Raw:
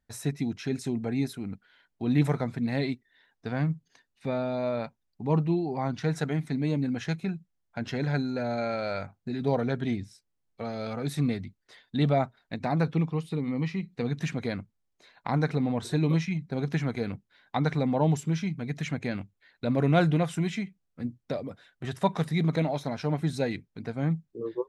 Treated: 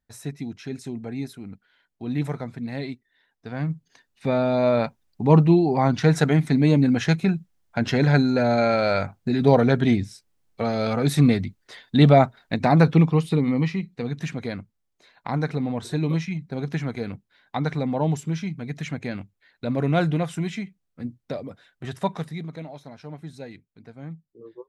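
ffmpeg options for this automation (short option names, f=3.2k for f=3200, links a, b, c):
-af "volume=10dB,afade=t=in:st=3.48:d=1.25:silence=0.237137,afade=t=out:st=13.31:d=0.66:silence=0.354813,afade=t=out:st=21.98:d=0.49:silence=0.281838"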